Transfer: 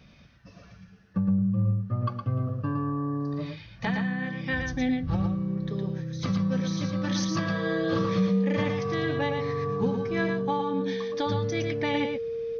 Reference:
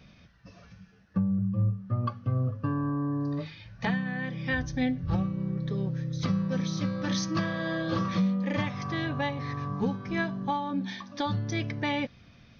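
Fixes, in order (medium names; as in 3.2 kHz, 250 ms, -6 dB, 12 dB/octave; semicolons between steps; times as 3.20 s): band-stop 460 Hz, Q 30; inverse comb 114 ms -5 dB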